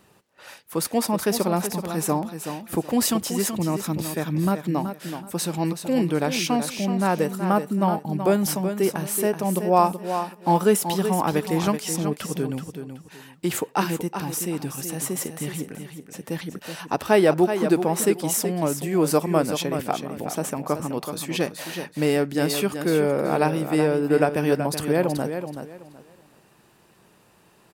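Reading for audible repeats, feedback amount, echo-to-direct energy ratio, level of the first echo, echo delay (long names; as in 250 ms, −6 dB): 3, 24%, −8.0 dB, −8.5 dB, 377 ms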